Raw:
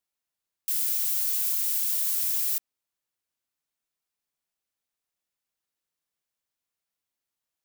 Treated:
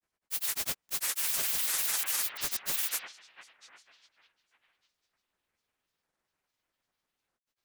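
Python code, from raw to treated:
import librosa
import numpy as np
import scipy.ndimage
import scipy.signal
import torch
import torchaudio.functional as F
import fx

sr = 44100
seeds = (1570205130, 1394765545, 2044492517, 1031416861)

y = fx.rev_spring(x, sr, rt60_s=3.2, pass_ms=(49, 57), chirp_ms=55, drr_db=-9.5)
y = fx.granulator(y, sr, seeds[0], grain_ms=100.0, per_s=20.0, spray_ms=559.0, spread_st=12)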